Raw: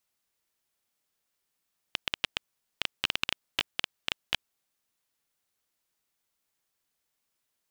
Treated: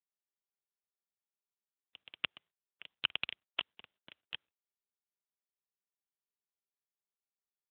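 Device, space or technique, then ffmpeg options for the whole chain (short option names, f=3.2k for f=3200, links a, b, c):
mobile call with aggressive noise cancelling: -filter_complex "[0:a]asplit=3[a][b][c];[a]afade=t=out:st=2.14:d=0.02[d];[b]highpass=97,afade=t=in:st=2.14:d=0.02,afade=t=out:st=2.91:d=0.02[e];[c]afade=t=in:st=2.91:d=0.02[f];[d][e][f]amix=inputs=3:normalize=0,highpass=140,afftdn=nr=29:nf=-46,volume=-1dB" -ar 8000 -c:a libopencore_amrnb -b:a 7950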